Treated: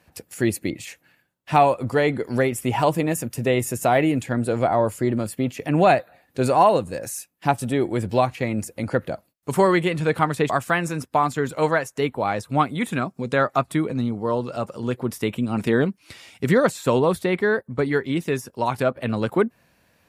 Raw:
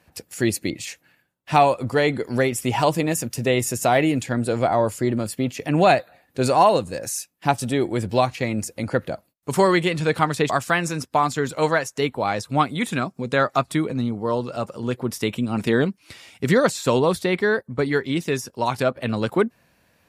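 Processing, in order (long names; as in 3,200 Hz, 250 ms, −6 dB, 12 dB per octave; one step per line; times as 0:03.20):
dynamic equaliser 5,200 Hz, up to −8 dB, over −44 dBFS, Q 0.91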